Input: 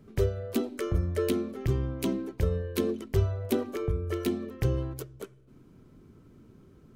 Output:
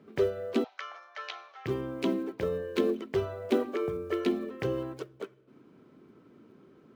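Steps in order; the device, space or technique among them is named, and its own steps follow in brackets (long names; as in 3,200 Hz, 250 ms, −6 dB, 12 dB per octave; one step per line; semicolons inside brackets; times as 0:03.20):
early digital voice recorder (band-pass filter 260–3,600 Hz; one scale factor per block 7 bits)
0:00.64–0:01.66: Chebyshev band-pass filter 730–6,100 Hz, order 4
level +3 dB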